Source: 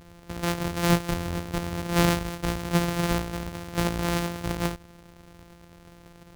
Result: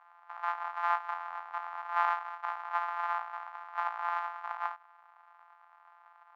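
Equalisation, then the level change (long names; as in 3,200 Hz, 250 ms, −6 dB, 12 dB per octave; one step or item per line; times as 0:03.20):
elliptic high-pass filter 790 Hz, stop band 50 dB
low-pass with resonance 1,200 Hz, resonance Q 2.3
−3.0 dB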